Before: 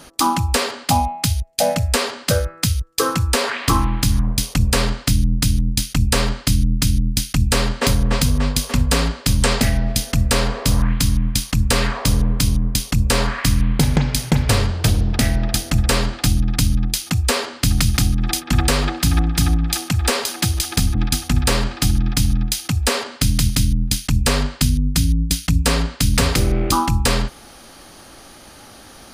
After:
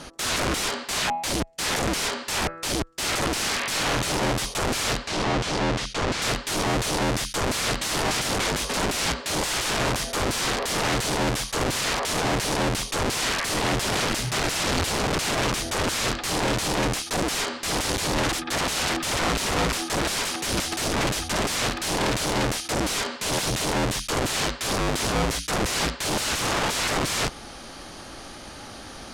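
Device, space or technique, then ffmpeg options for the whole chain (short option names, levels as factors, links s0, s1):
overflowing digital effects unit: -filter_complex "[0:a]aeval=exprs='(mod(11.9*val(0)+1,2)-1)/11.9':c=same,lowpass=8200,asettb=1/sr,asplit=3[s0][s1][s2];[s0]atrim=end=5.074[s3];[s1]atrim=start=5.07:end=6.22,asetpts=PTS-STARTPTS,afade=t=in:d=0.004:c=qsin,afade=t=out:st=1.146:d=0.004:c=qsin,lowpass=5700[s4];[s2]atrim=start=6.216[s5];[s3][s4]acrossfade=d=0.004:c1=hsin:c2=qsin[s6];[s6][s5]acrossfade=d=0.004:c1=qsin:c2=hsin,volume=1.33"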